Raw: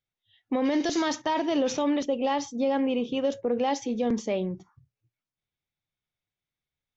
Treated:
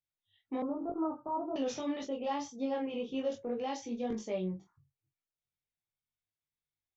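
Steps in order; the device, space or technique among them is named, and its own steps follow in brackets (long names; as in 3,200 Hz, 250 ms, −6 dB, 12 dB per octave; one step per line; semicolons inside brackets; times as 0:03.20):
double-tracked vocal (double-tracking delay 22 ms −4 dB; chorus effect 1.9 Hz, delay 19 ms, depth 2.2 ms)
0:00.62–0:01.56: Chebyshev low-pass filter 1,400 Hz, order 8
level −7.5 dB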